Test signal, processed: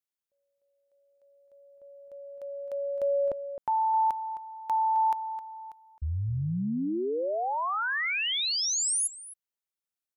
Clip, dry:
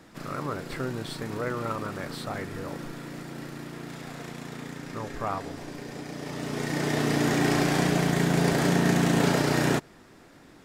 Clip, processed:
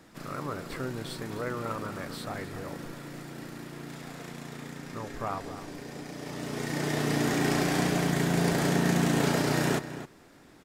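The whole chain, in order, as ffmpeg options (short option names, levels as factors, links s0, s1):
-filter_complex "[0:a]highshelf=f=8100:g=4,asplit=2[s0][s1];[s1]adelay=262.4,volume=0.251,highshelf=f=4000:g=-5.9[s2];[s0][s2]amix=inputs=2:normalize=0,volume=0.708"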